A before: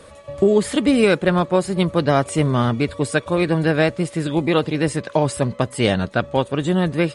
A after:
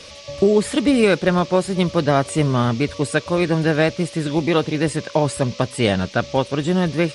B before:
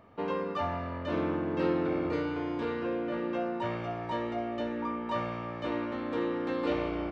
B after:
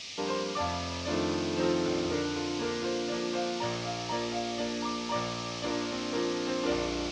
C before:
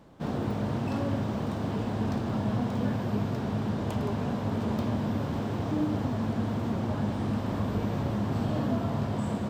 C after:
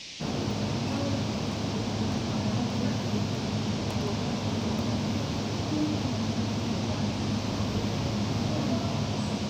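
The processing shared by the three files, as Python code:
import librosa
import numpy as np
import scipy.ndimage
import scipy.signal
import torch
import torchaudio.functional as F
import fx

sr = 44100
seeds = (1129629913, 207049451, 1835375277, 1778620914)

y = fx.dmg_noise_band(x, sr, seeds[0], low_hz=2100.0, high_hz=6000.0, level_db=-42.0)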